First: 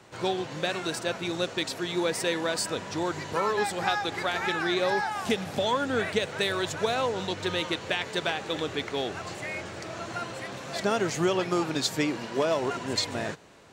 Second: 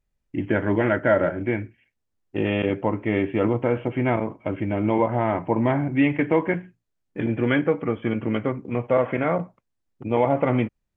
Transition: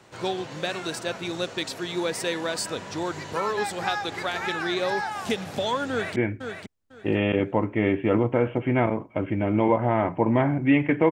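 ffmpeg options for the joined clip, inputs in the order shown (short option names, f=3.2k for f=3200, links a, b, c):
-filter_complex "[0:a]apad=whole_dur=11.11,atrim=end=11.11,atrim=end=6.162[a];[1:a]atrim=start=1.458:end=6.41[b];[a][b]acrossfade=d=0.004:c1=hsin:c2=hsin,asplit=2[c][d];[d]afade=t=in:st=5.9:d=0.01,afade=t=out:st=6.16:d=0.01,aecho=0:1:500|1000|1500:0.446684|0.0893367|0.0178673[e];[c][e]amix=inputs=2:normalize=0"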